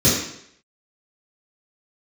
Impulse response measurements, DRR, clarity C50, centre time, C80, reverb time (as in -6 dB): -10.5 dB, 2.0 dB, 52 ms, 5.5 dB, 0.70 s